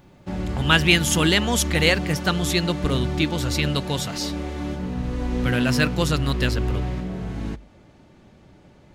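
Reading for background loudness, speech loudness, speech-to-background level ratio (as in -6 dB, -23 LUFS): -28.0 LUFS, -22.0 LUFS, 6.0 dB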